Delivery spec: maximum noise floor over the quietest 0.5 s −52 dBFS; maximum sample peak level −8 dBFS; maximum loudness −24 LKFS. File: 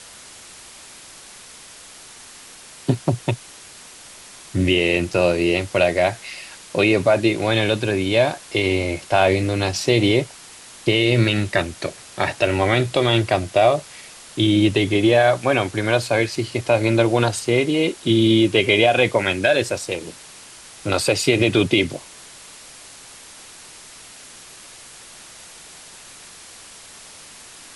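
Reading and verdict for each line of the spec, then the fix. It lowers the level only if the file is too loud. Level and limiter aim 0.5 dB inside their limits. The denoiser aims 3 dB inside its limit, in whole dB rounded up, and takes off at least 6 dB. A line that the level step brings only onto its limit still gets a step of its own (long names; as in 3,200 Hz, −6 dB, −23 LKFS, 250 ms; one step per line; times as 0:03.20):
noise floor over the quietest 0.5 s −42 dBFS: out of spec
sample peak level −5.5 dBFS: out of spec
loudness −19.0 LKFS: out of spec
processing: broadband denoise 8 dB, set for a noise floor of −42 dBFS
level −5.5 dB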